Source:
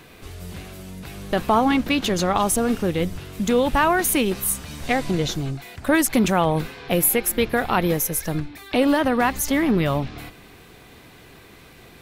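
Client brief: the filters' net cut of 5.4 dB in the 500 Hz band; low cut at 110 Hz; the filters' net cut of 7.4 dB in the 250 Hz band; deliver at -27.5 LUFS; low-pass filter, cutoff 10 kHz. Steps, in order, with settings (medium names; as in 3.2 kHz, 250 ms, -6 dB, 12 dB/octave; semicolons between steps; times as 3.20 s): high-pass 110 Hz; low-pass 10 kHz; peaking EQ 250 Hz -8 dB; peaking EQ 500 Hz -4.5 dB; trim -2.5 dB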